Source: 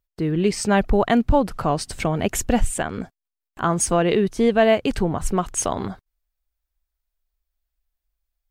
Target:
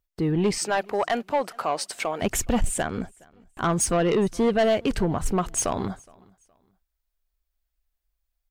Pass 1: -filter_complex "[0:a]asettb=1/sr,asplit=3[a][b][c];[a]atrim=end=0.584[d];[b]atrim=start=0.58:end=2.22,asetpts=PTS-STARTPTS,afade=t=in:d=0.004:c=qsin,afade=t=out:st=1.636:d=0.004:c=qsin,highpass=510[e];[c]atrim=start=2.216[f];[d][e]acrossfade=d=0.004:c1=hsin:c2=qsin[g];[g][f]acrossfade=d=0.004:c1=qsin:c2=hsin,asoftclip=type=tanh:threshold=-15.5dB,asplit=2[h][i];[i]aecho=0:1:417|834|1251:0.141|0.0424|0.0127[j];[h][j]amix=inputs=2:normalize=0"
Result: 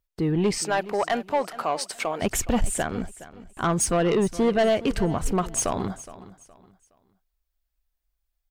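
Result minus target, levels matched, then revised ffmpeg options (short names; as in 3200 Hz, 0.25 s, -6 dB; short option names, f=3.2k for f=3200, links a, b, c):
echo-to-direct +10 dB
-filter_complex "[0:a]asettb=1/sr,asplit=3[a][b][c];[a]atrim=end=0.584[d];[b]atrim=start=0.58:end=2.22,asetpts=PTS-STARTPTS,afade=t=in:d=0.004:c=qsin,afade=t=out:st=1.636:d=0.004:c=qsin,highpass=510[e];[c]atrim=start=2.216[f];[d][e]acrossfade=d=0.004:c1=hsin:c2=qsin[g];[g][f]acrossfade=d=0.004:c1=qsin:c2=hsin,asoftclip=type=tanh:threshold=-15.5dB,asplit=2[h][i];[i]aecho=0:1:417|834:0.0447|0.0134[j];[h][j]amix=inputs=2:normalize=0"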